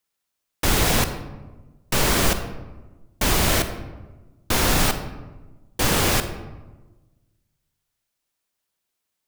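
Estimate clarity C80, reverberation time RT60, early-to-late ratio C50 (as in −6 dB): 11.0 dB, 1.2 s, 10.0 dB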